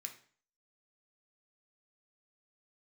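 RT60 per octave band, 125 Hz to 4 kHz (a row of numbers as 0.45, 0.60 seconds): 0.50, 0.50, 0.45, 0.45, 0.45, 0.45 seconds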